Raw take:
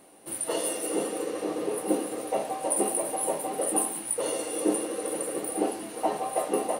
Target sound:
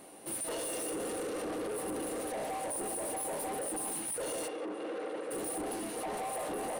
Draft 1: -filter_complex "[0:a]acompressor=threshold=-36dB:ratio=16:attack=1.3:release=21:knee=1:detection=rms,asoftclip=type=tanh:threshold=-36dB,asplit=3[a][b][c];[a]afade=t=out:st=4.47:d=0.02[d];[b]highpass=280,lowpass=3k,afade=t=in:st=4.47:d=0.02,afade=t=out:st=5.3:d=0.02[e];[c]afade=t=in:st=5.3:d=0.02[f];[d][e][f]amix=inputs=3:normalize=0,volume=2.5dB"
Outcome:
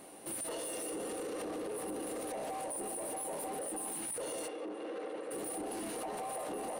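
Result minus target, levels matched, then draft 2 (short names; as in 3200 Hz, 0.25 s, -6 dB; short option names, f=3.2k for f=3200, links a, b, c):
compressor: peak gain reduction +6 dB
-filter_complex "[0:a]acompressor=threshold=-29.5dB:ratio=16:attack=1.3:release=21:knee=1:detection=rms,asoftclip=type=tanh:threshold=-36dB,asplit=3[a][b][c];[a]afade=t=out:st=4.47:d=0.02[d];[b]highpass=280,lowpass=3k,afade=t=in:st=4.47:d=0.02,afade=t=out:st=5.3:d=0.02[e];[c]afade=t=in:st=5.3:d=0.02[f];[d][e][f]amix=inputs=3:normalize=0,volume=2.5dB"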